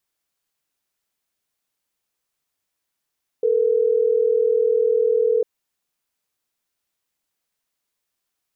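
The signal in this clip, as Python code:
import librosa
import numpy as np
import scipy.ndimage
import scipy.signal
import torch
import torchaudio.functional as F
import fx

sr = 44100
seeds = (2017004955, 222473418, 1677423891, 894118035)

y = fx.call_progress(sr, length_s=3.12, kind='ringback tone', level_db=-18.0)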